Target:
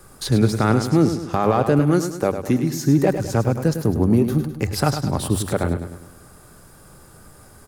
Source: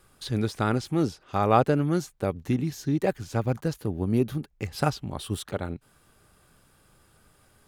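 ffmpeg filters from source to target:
-filter_complex "[0:a]asplit=2[a][b];[b]acompressor=threshold=-35dB:ratio=6,volume=0dB[c];[a][c]amix=inputs=2:normalize=0,bandreject=f=50:t=h:w=6,bandreject=f=100:t=h:w=6,acrossover=split=190|3800[d][e][f];[e]adynamicsmooth=sensitivity=1.5:basefreq=2.2k[g];[d][g][f]amix=inputs=3:normalize=0,asettb=1/sr,asplit=3[h][i][j];[h]atrim=end=1.794[k];[i]atrim=start=1.79:end=2.86,asetpts=PTS-STARTPTS,afade=t=in:d=0.004:c=qsin,afade=t=out:st=1.066:d=0.004:c=qsin,lowshelf=f=170:g=-9.5[l];[j]atrim=start=2.856[m];[k][l]acrossfade=d=0.004:c1=hsin:c2=qsin[n];[n][m]acrossfade=d=0.004:c1=qsin:c2=hsin,alimiter=limit=-15.5dB:level=0:latency=1:release=47,aecho=1:1:103|206|309|412|515:0.355|0.167|0.0784|0.0368|0.0173,volume=8dB"

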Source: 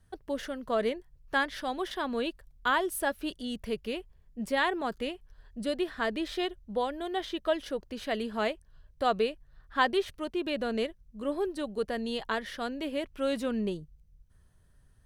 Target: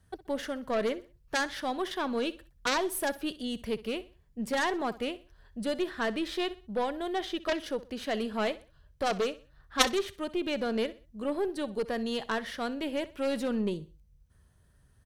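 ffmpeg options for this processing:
-af "highpass=44,aeval=exprs='0.282*(cos(1*acos(clip(val(0)/0.282,-1,1)))-cos(1*PI/2))+0.141*(cos(3*acos(clip(val(0)/0.282,-1,1)))-cos(3*PI/2))+0.0794*(cos(4*acos(clip(val(0)/0.282,-1,1)))-cos(4*PI/2))+0.0447*(cos(6*acos(clip(val(0)/0.282,-1,1)))-cos(6*PI/2))':c=same,aecho=1:1:63|126|189:0.133|0.0453|0.0154,volume=7.5dB"

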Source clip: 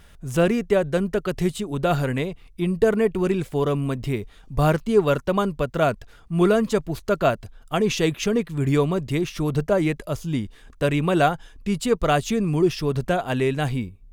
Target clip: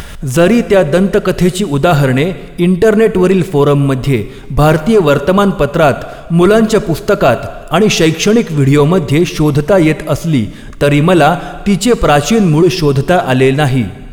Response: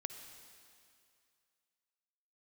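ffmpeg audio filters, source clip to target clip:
-filter_complex "[0:a]acompressor=mode=upward:threshold=-31dB:ratio=2.5,asplit=2[a][b];[1:a]atrim=start_sample=2205,asetrate=70560,aresample=44100,lowshelf=f=62:g=-3.5[c];[b][c]afir=irnorm=-1:irlink=0,volume=3.5dB[d];[a][d]amix=inputs=2:normalize=0,apsyclip=11.5dB,volume=-2dB"

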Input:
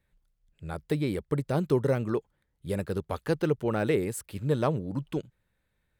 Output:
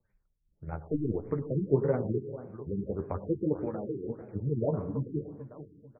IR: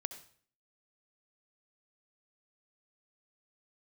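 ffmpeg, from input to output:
-filter_complex "[0:a]acrossover=split=130|1500[a][b][c];[c]acompressor=threshold=-59dB:ratio=6[d];[a][b][d]amix=inputs=3:normalize=0,asettb=1/sr,asplit=3[e][f][g];[e]atrim=end=0.714[h];[f]atrim=start=0.71:end=1.19,asetpts=PTS-STARTPTS,afade=t=in:d=0.004:c=qsin,afade=t=out:st=0.476:d=0.004:c=qsin,aeval=exprs='0.178*(cos(1*acos(clip(val(0)/0.178,-1,1)))-cos(1*PI/2))+0.00891*(cos(8*acos(clip(val(0)/0.178,-1,1)))-cos(8*PI/2))':c=same[i];[g]atrim=start=1.186[j];[h][i]acrossfade=d=0.004:c1=hsin:c2=qsin[k];[k][j]acrossfade=d=0.004:c1=qsin:c2=hsin,asettb=1/sr,asplit=3[l][m][n];[l]atrim=end=3.664[o];[m]atrim=start=3.66:end=4.08,asetpts=PTS-STARTPTS,afade=t=in:d=0.004:c=qsin,afade=t=out:st=0.416:d=0.004:c=qsin,acrossover=split=380|830[p][q][r];[p]acompressor=threshold=-39dB:ratio=4[s];[q]acompressor=threshold=-37dB:ratio=4[t];[r]acompressor=threshold=-50dB:ratio=4[u];[s][t][u]amix=inputs=3:normalize=0[v];[n]atrim=start=4.076[w];[o][v]acrossfade=d=0.004:c1=hsin:c2=qsin[x];[x][w]acrossfade=d=0.004:c1=qsin:c2=hsin,tremolo=f=19:d=0.55,flanger=delay=8.2:depth=7.4:regen=31:speed=0.89:shape=triangular,aecho=1:1:442|884|1326|1768:0.2|0.0738|0.0273|0.0101,asplit=2[y][z];[1:a]atrim=start_sample=2205,asetrate=31752,aresample=44100[aa];[z][aa]afir=irnorm=-1:irlink=0,volume=5dB[ab];[y][ab]amix=inputs=2:normalize=0,afftfilt=real='re*lt(b*sr/1024,420*pow(2600/420,0.5+0.5*sin(2*PI*1.7*pts/sr)))':imag='im*lt(b*sr/1024,420*pow(2600/420,0.5+0.5*sin(2*PI*1.7*pts/sr)))':win_size=1024:overlap=0.75,volume=-4.5dB"

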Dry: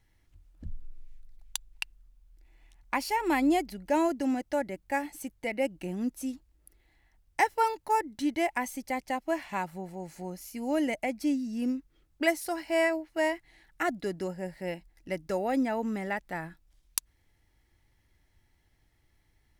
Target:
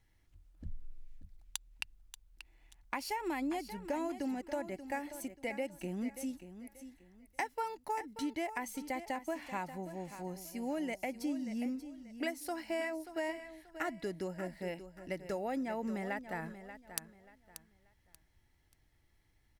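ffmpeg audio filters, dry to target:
-filter_complex "[0:a]acompressor=threshold=-30dB:ratio=6,asplit=2[a][b];[b]aecho=0:1:584|1168|1752:0.251|0.0703|0.0197[c];[a][c]amix=inputs=2:normalize=0,volume=-3.5dB"

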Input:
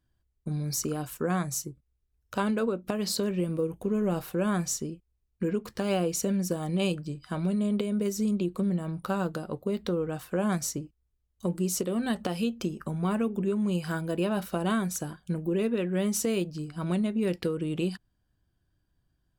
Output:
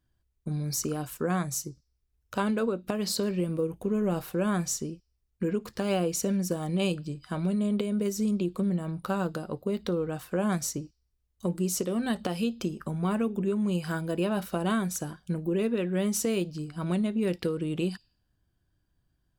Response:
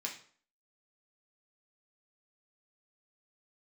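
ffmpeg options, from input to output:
-filter_complex "[0:a]asplit=2[a][b];[b]asuperpass=centerf=5400:order=4:qfactor=1.3[c];[1:a]atrim=start_sample=2205,asetrate=30429,aresample=44100,adelay=57[d];[c][d]afir=irnorm=-1:irlink=0,volume=-21.5dB[e];[a][e]amix=inputs=2:normalize=0"

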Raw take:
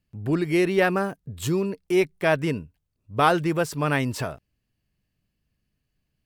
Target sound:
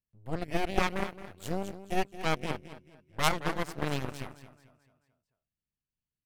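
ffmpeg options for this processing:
-af "aecho=1:1:219|438|657|876|1095:0.398|0.179|0.0806|0.0363|0.0163,aeval=exprs='0.596*(cos(1*acos(clip(val(0)/0.596,-1,1)))-cos(1*PI/2))+0.15*(cos(3*acos(clip(val(0)/0.596,-1,1)))-cos(3*PI/2))+0.168*(cos(4*acos(clip(val(0)/0.596,-1,1)))-cos(4*PI/2))+0.0075*(cos(7*acos(clip(val(0)/0.596,-1,1)))-cos(7*PI/2))':c=same,volume=-4dB"

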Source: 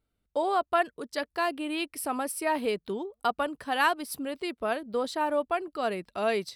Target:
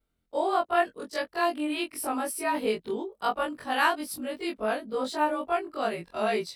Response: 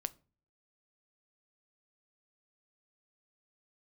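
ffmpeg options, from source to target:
-af "afftfilt=real='re':imag='-im':win_size=2048:overlap=0.75,volume=5dB"

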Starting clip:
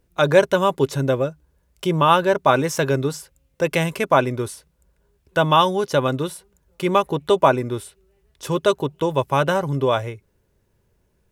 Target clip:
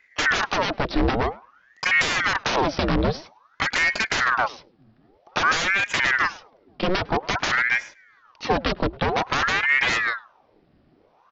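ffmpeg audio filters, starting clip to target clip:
-filter_complex "[0:a]aresample=11025,aeval=exprs='0.106*(abs(mod(val(0)/0.106+3,4)-2)-1)':c=same,aresample=44100,acrossover=split=310[a][b];[b]acompressor=threshold=-29dB:ratio=4[c];[a][c]amix=inputs=2:normalize=0,asplit=2[d][e];[e]adelay=104,lowpass=f=1.9k:p=1,volume=-22dB,asplit=2[f][g];[g]adelay=104,lowpass=f=1.9k:p=1,volume=0.17[h];[d][f][h]amix=inputs=3:normalize=0,aeval=exprs='val(0)*sin(2*PI*1100*n/s+1100*0.85/0.51*sin(2*PI*0.51*n/s))':c=same,volume=8.5dB"

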